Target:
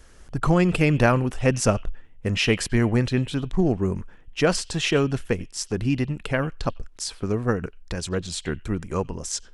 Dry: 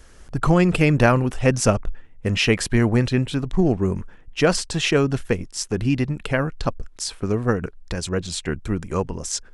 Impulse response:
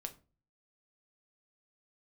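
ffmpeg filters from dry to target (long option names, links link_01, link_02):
-filter_complex "[0:a]asplit=2[link_01][link_02];[link_02]bandpass=frequency=3000:width_type=q:width=7.9:csg=0[link_03];[1:a]atrim=start_sample=2205,adelay=91[link_04];[link_03][link_04]afir=irnorm=-1:irlink=0,volume=-5dB[link_05];[link_01][link_05]amix=inputs=2:normalize=0,volume=-2.5dB"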